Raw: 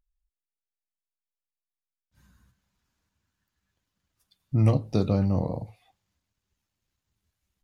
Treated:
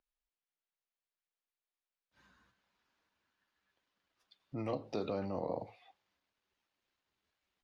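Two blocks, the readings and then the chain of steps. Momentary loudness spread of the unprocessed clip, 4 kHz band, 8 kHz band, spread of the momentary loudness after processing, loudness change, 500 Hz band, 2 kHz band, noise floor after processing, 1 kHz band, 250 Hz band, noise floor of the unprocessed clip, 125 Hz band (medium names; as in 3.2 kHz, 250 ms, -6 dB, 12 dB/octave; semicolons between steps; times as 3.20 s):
13 LU, -8.0 dB, no reading, 8 LU, -14.0 dB, -7.0 dB, -6.0 dB, under -85 dBFS, -5.0 dB, -14.5 dB, under -85 dBFS, -23.0 dB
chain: compression, threshold -23 dBFS, peak gain reduction 8 dB; peak limiter -21.5 dBFS, peak gain reduction 8 dB; three-band isolator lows -20 dB, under 290 Hz, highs -22 dB, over 4.9 kHz; trim +2 dB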